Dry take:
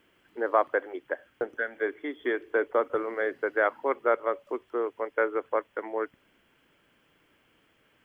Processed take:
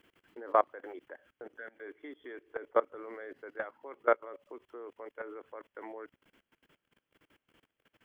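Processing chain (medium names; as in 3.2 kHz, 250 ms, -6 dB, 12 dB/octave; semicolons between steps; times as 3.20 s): level held to a coarse grid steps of 22 dB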